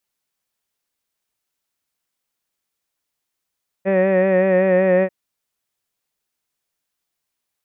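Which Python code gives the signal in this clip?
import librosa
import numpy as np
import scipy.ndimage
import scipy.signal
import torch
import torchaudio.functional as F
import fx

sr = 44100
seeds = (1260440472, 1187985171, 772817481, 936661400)

y = fx.vowel(sr, seeds[0], length_s=1.24, word='head', hz=190.0, glide_st=-0.5, vibrato_hz=5.3, vibrato_st=0.45)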